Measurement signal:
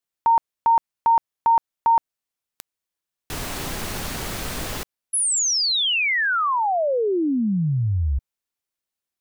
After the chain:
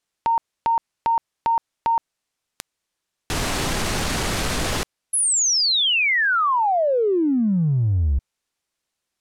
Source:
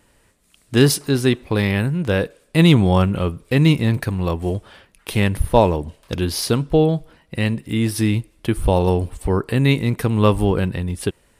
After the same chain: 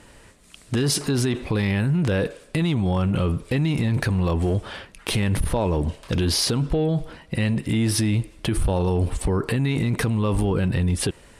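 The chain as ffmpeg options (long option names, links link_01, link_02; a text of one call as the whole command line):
ffmpeg -i in.wav -af "lowpass=9500,acompressor=threshold=-26dB:ratio=16:attack=0.78:release=35:knee=6:detection=peak,volume=9dB" out.wav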